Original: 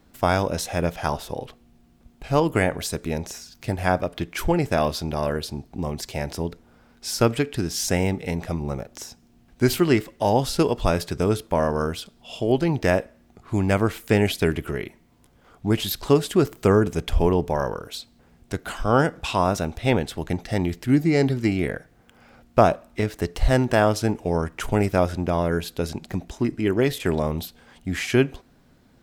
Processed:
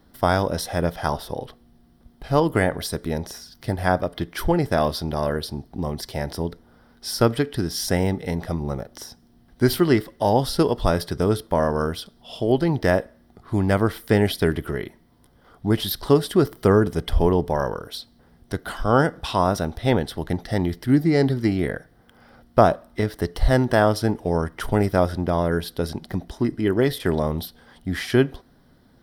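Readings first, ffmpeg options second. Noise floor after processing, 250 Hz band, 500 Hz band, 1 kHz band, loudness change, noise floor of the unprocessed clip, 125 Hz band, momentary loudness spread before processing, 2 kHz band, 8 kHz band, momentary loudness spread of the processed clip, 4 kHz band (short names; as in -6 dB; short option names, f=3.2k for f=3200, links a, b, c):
-56 dBFS, +1.0 dB, +1.0 dB, +1.0 dB, +1.0 dB, -57 dBFS, +1.0 dB, 12 LU, 0.0 dB, -2.5 dB, 12 LU, +0.5 dB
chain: -af "superequalizer=12b=0.398:15b=0.316,volume=1dB"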